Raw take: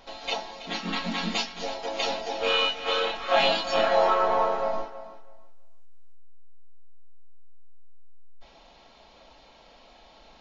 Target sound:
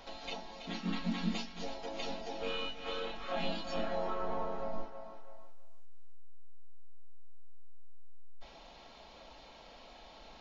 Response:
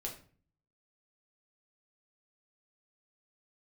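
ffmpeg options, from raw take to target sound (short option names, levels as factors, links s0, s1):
-filter_complex "[0:a]acrossover=split=270[s0][s1];[s1]acompressor=threshold=0.00282:ratio=2[s2];[s0][s2]amix=inputs=2:normalize=0"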